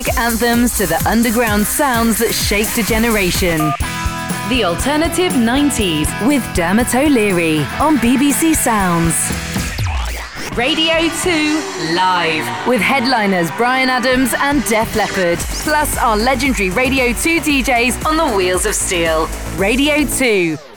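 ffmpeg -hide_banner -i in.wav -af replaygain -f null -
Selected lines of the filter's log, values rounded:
track_gain = -4.0 dB
track_peak = 0.352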